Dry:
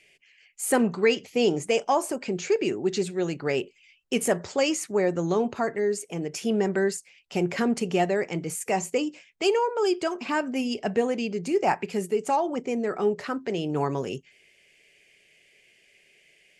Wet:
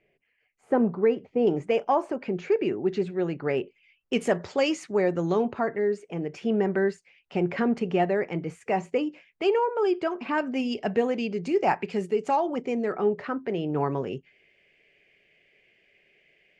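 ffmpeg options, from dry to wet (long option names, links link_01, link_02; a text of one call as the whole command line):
ffmpeg -i in.wav -af "asetnsamples=nb_out_samples=441:pad=0,asendcmd='1.47 lowpass f 2100;4.13 lowpass f 4100;5.45 lowpass f 2400;10.38 lowpass f 4200;12.92 lowpass f 2300',lowpass=1000" out.wav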